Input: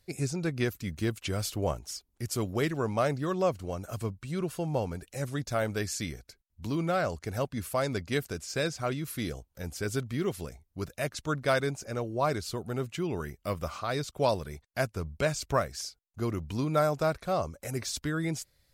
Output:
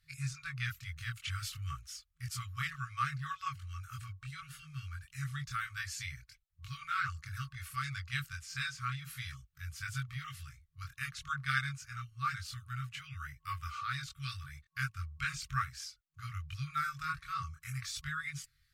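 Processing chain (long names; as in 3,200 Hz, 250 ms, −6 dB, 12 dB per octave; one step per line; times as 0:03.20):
brick-wall band-stop 160–1,100 Hz
multi-voice chorus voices 4, 0.54 Hz, delay 23 ms, depth 1.4 ms
bass and treble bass −7 dB, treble −8 dB
level +2.5 dB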